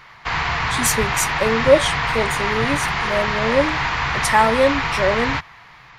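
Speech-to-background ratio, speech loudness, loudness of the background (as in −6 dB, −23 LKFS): 0.5 dB, −20.5 LKFS, −21.0 LKFS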